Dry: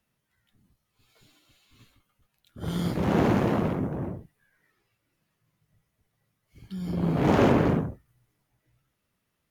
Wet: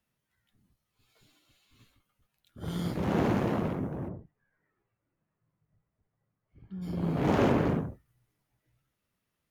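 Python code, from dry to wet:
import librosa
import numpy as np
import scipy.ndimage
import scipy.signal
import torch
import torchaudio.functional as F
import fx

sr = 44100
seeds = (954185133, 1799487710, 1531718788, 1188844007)

y = fx.lowpass(x, sr, hz=1400.0, slope=12, at=(4.08, 6.81), fade=0.02)
y = y * librosa.db_to_amplitude(-4.5)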